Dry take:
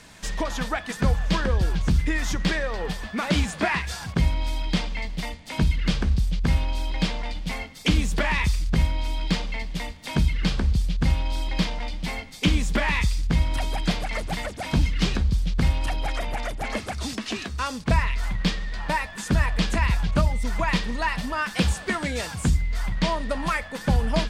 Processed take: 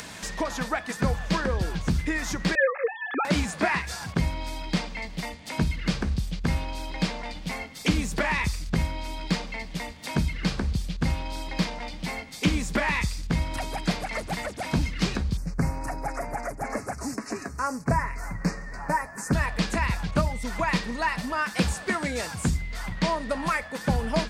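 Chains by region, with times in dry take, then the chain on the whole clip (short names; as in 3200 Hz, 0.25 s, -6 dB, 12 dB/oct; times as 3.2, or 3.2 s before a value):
2.55–3.25 sine-wave speech + comb 2.4 ms, depth 85%
15.37–19.33 Butterworth band-stop 3300 Hz, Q 0.82 + comb 7.2 ms, depth 36%
whole clip: HPF 110 Hz 6 dB/oct; upward compressor, threshold -32 dBFS; dynamic EQ 3200 Hz, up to -6 dB, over -46 dBFS, Q 2.7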